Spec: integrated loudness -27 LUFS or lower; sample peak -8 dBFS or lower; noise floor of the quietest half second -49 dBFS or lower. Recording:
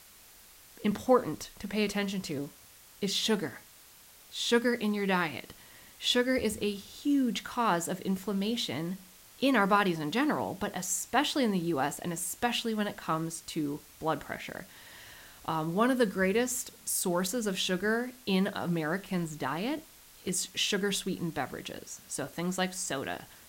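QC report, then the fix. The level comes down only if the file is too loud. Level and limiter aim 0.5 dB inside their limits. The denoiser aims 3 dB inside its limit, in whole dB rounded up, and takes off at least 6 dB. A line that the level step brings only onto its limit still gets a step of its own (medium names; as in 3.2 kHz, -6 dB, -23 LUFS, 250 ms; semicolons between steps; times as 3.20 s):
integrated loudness -31.0 LUFS: pass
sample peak -11.5 dBFS: pass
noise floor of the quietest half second -55 dBFS: pass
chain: none needed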